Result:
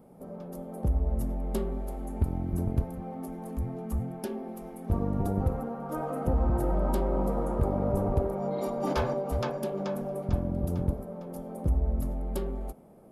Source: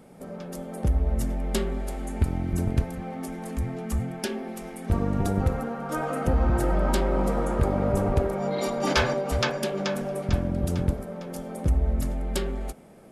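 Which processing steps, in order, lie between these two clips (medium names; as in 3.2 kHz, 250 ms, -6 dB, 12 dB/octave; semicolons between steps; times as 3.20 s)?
high-order bell 3.6 kHz -11.5 dB 2.9 oct; trim -3.5 dB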